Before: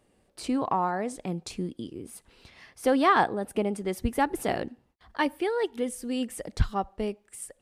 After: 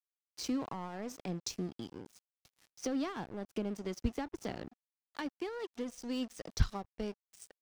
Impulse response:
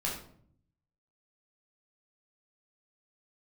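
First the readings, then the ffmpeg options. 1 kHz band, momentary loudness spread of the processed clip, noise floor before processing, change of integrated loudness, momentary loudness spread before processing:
-18.0 dB, 12 LU, -68 dBFS, -11.0 dB, 16 LU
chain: -filter_complex "[0:a]acrossover=split=290[a][b];[b]acompressor=threshold=-34dB:ratio=16[c];[a][c]amix=inputs=2:normalize=0,lowpass=f=5.9k:t=q:w=4.6,aeval=exprs='sgn(val(0))*max(abs(val(0))-0.00708,0)':c=same,volume=-4dB"

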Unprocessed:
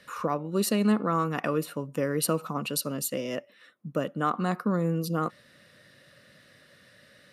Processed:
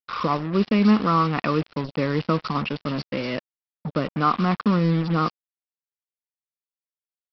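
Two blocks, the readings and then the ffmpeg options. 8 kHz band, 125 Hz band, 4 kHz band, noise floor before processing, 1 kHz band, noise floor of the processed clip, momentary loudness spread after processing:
under -20 dB, +7.5 dB, +4.0 dB, -58 dBFS, +7.0 dB, under -85 dBFS, 10 LU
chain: -filter_complex "[0:a]aecho=1:1:0.9:0.38,acontrast=35,acrossover=split=4000[a][b];[b]adelay=220[c];[a][c]amix=inputs=2:normalize=0,aexciter=amount=1.3:drive=3:freq=2.2k,aresample=11025,acrusher=bits=4:mix=0:aa=0.5,aresample=44100"

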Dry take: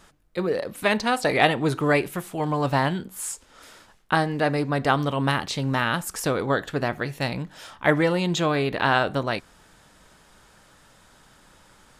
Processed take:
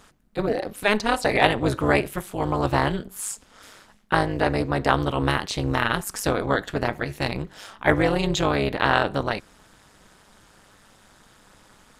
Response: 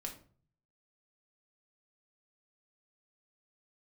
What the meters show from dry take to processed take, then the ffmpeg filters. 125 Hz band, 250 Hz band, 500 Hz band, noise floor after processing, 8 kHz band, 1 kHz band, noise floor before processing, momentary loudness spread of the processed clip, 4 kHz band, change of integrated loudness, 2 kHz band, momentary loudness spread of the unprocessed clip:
0.0 dB, 0.0 dB, +0.5 dB, -56 dBFS, +0.5 dB, +0.5 dB, -56 dBFS, 9 LU, +0.5 dB, +0.5 dB, +0.5 dB, 9 LU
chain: -af "tremolo=f=210:d=0.919,volume=4.5dB"

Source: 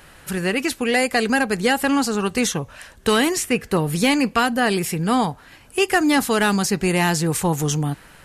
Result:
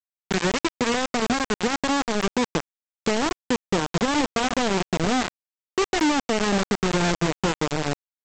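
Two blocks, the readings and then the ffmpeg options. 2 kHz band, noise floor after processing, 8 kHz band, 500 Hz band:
-5.5 dB, under -85 dBFS, -5.5 dB, -3.5 dB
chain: -af "aemphasis=mode=reproduction:type=50fm,bandreject=f=50:t=h:w=6,bandreject=f=100:t=h:w=6,bandreject=f=150:t=h:w=6,deesser=0.95,highshelf=f=2.7k:g=-11.5,acompressor=threshold=-23dB:ratio=6,aresample=16000,acrusher=bits=3:mix=0:aa=0.000001,aresample=44100,volume=1.5dB"

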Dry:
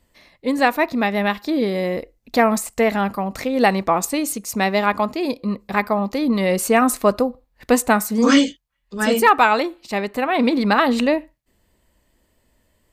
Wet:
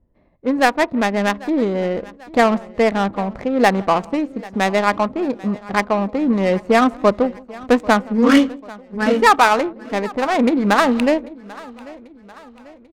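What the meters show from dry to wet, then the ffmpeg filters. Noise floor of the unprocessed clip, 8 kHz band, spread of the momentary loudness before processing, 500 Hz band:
-66 dBFS, -7.0 dB, 9 LU, +2.0 dB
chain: -filter_complex "[0:a]asplit=2[a][b];[b]aecho=0:1:167:0.0841[c];[a][c]amix=inputs=2:normalize=0,adynamicsmooth=sensitivity=1:basefreq=600,asplit=2[d][e];[e]aecho=0:1:791|1582|2373|3164:0.0891|0.0446|0.0223|0.0111[f];[d][f]amix=inputs=2:normalize=0,volume=2dB"

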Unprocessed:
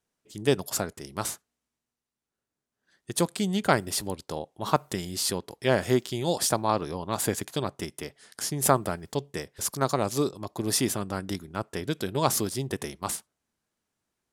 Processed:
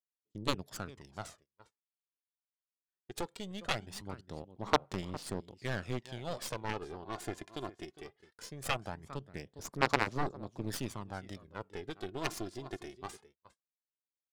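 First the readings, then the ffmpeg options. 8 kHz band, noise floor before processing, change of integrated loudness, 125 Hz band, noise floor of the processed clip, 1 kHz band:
-17.5 dB, under -85 dBFS, -10.5 dB, -10.5 dB, under -85 dBFS, -8.5 dB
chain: -filter_complex "[0:a]asplit=2[a][b];[b]aecho=0:1:407:0.158[c];[a][c]amix=inputs=2:normalize=0,aphaser=in_gain=1:out_gain=1:delay=2.9:decay=0.56:speed=0.2:type=sinusoidal,adynamicsmooth=sensitivity=3:basefreq=3.8k,agate=range=-25dB:threshold=-49dB:ratio=16:detection=peak,aeval=exprs='1.06*(cos(1*acos(clip(val(0)/1.06,-1,1)))-cos(1*PI/2))+0.188*(cos(2*acos(clip(val(0)/1.06,-1,1)))-cos(2*PI/2))+0.133*(cos(6*acos(clip(val(0)/1.06,-1,1)))-cos(6*PI/2))+0.211*(cos(7*acos(clip(val(0)/1.06,-1,1)))-cos(7*PI/2))':c=same,volume=-5dB"

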